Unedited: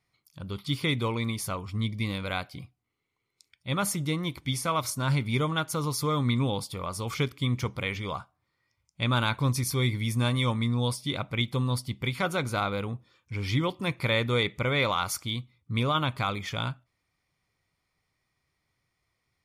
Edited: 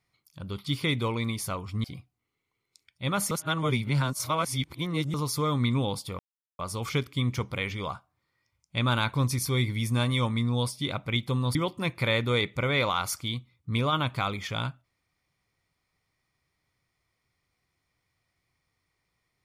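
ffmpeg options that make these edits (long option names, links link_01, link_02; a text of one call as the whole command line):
ffmpeg -i in.wav -filter_complex "[0:a]asplit=6[link_01][link_02][link_03][link_04][link_05][link_06];[link_01]atrim=end=1.842[link_07];[link_02]atrim=start=2.488:end=3.962[link_08];[link_03]atrim=start=3.958:end=5.792,asetpts=PTS-STARTPTS,areverse[link_09];[link_04]atrim=start=5.788:end=6.84,asetpts=PTS-STARTPTS,afade=type=out:start_time=1.048:duration=0.004:curve=hsin,apad=pad_dur=0.4[link_10];[link_05]atrim=start=6.84:end=11.802,asetpts=PTS-STARTPTS,afade=type=in:duration=0.004:curve=hsin[link_11];[link_06]atrim=start=13.568[link_12];[link_07][link_08]acrossfade=duration=0.004:curve1=hsin:curve2=hsin[link_13];[link_13][link_09]acrossfade=duration=0.004:curve1=hsin:curve2=hsin[link_14];[link_10][link_11]concat=n=2:v=0:a=1[link_15];[link_14][link_15]acrossfade=duration=0.004:curve1=hsin:curve2=hsin[link_16];[link_16][link_12]acrossfade=duration=0.004:curve1=hsin:curve2=hsin" out.wav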